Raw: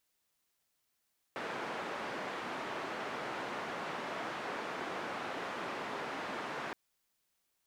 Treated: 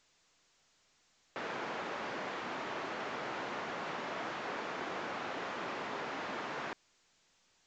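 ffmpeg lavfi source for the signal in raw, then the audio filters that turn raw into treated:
-f lavfi -i "anoisesrc=color=white:duration=5.37:sample_rate=44100:seed=1,highpass=frequency=220,lowpass=frequency=1400,volume=-22.9dB"
-ar 16000 -c:a pcm_alaw

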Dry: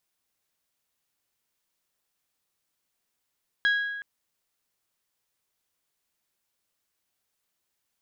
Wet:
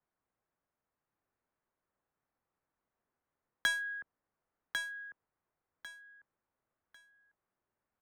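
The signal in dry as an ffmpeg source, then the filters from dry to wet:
-f lavfi -i "aevalsrc='0.119*pow(10,-3*t/1.3)*sin(2*PI*1650*t)+0.0398*pow(10,-3*t/0.8)*sin(2*PI*3300*t)+0.0133*pow(10,-3*t/0.704)*sin(2*PI*3960*t)+0.00447*pow(10,-3*t/0.603)*sin(2*PI*4950*t)+0.0015*pow(10,-3*t/0.493)*sin(2*PI*6600*t)':duration=0.37:sample_rate=44100"
-filter_complex "[0:a]acrossover=split=320|3000[link_01][link_02][link_03];[link_02]acompressor=threshold=-32dB:ratio=4[link_04];[link_01][link_04][link_03]amix=inputs=3:normalize=0,acrossover=split=200|1000|1700[link_05][link_06][link_07][link_08];[link_08]acrusher=bits=4:mix=0:aa=0.5[link_09];[link_05][link_06][link_07][link_09]amix=inputs=4:normalize=0,aecho=1:1:1098|2196|3294:0.531|0.127|0.0306"

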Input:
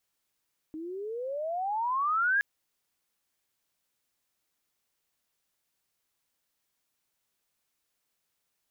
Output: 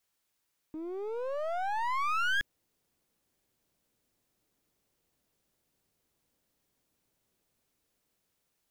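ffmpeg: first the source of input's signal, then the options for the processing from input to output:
-f lavfi -i "aevalsrc='pow(10,(-22+14*(t/1.67-1))/20)*sin(2*PI*306*1.67/(29.5*log(2)/12)*(exp(29.5*log(2)/12*t/1.67)-1))':duration=1.67:sample_rate=44100"
-filter_complex "[0:a]acrossover=split=580[link_01][link_02];[link_01]dynaudnorm=framelen=790:gausssize=5:maxgain=12dB[link_03];[link_03][link_02]amix=inputs=2:normalize=0,aeval=exprs='clip(val(0),-1,0.0119)':channel_layout=same"

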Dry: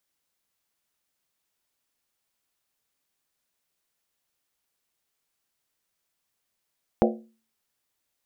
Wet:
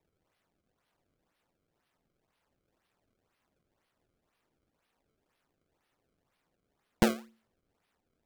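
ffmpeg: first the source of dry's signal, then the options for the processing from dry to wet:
-f lavfi -i "aevalsrc='0.126*pow(10,-3*t/0.4)*sin(2*PI*224*t)+0.112*pow(10,-3*t/0.317)*sin(2*PI*357.1*t)+0.1*pow(10,-3*t/0.274)*sin(2*PI*478.5*t)+0.0891*pow(10,-3*t/0.264)*sin(2*PI*514.3*t)+0.0794*pow(10,-3*t/0.246)*sin(2*PI*594.3*t)+0.0708*pow(10,-3*t/0.234)*sin(2*PI*653.6*t)+0.0631*pow(10,-3*t/0.225)*sin(2*PI*706.9*t)+0.0562*pow(10,-3*t/0.214)*sin(2*PI*784.2*t)':duration=0.63:sample_rate=44100"
-filter_complex "[0:a]acrossover=split=100|480[link_01][link_02][link_03];[link_03]acompressor=threshold=-34dB:ratio=6[link_04];[link_01][link_02][link_04]amix=inputs=3:normalize=0,acrusher=samples=28:mix=1:aa=0.000001:lfo=1:lforange=44.8:lforate=2"

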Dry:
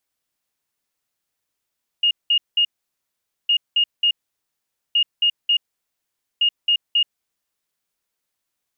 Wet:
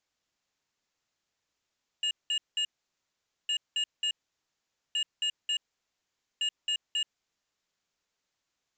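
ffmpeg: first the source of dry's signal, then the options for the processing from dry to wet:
-f lavfi -i "aevalsrc='0.211*sin(2*PI*2850*t)*clip(min(mod(mod(t,1.46),0.27),0.08-mod(mod(t,1.46),0.27))/0.005,0,1)*lt(mod(t,1.46),0.81)':duration=5.84:sample_rate=44100"
-af "alimiter=limit=-17dB:level=0:latency=1,aresample=16000,asoftclip=type=tanh:threshold=-28dB,aresample=44100"

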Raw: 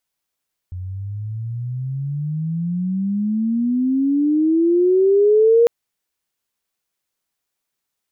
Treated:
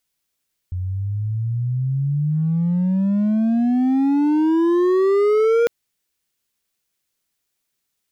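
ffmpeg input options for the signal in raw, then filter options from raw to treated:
-f lavfi -i "aevalsrc='pow(10,(-9+17*(t/4.95-1))/20)*sin(2*PI*89*4.95/(29*log(2)/12)*(exp(29*log(2)/12*t/4.95)-1))':duration=4.95:sample_rate=44100"
-filter_complex "[0:a]equalizer=frequency=870:width_type=o:width=1.8:gain=-6,asplit=2[link_01][link_02];[link_02]aeval=exprs='0.0891*(abs(mod(val(0)/0.0891+3,4)-2)-1)':channel_layout=same,volume=-4dB[link_03];[link_01][link_03]amix=inputs=2:normalize=0"

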